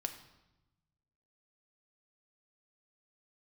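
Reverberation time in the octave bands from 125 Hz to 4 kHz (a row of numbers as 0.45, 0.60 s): 1.7, 1.3, 1.0, 0.95, 0.85, 0.80 s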